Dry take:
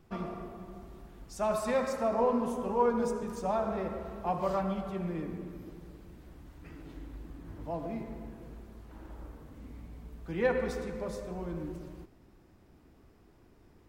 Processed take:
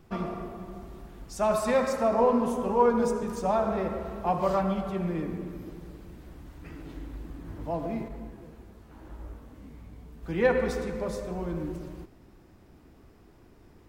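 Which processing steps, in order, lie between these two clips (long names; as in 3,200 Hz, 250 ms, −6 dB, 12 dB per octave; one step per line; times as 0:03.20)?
0:08.08–0:10.23: micro pitch shift up and down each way 28 cents
level +5 dB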